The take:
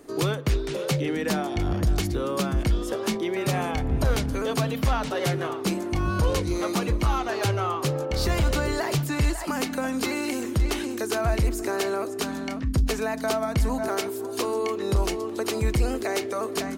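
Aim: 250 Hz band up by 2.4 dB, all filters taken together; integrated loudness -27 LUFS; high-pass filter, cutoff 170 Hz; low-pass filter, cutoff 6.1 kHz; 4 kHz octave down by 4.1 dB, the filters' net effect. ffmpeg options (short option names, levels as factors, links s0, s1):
-af "highpass=170,lowpass=6100,equalizer=f=250:t=o:g=4.5,equalizer=f=4000:t=o:g=-4.5"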